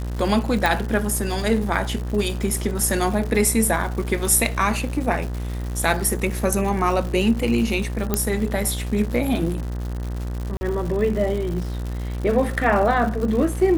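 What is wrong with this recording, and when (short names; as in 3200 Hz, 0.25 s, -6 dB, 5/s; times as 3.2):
buzz 60 Hz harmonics 33 -27 dBFS
crackle 220/s -29 dBFS
0.66 pop
8.14 pop -5 dBFS
10.57–10.61 gap 40 ms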